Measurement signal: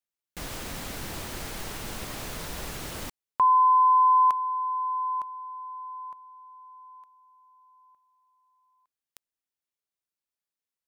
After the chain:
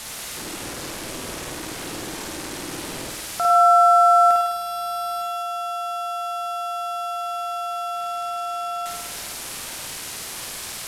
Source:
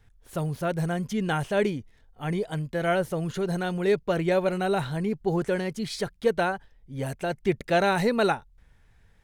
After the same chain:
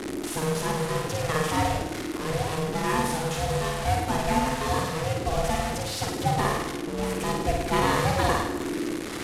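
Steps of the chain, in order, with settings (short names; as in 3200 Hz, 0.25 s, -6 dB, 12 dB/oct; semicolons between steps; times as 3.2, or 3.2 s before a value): delta modulation 64 kbps, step -25.5 dBFS; flutter echo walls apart 8.9 m, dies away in 1 s; ring modulator 320 Hz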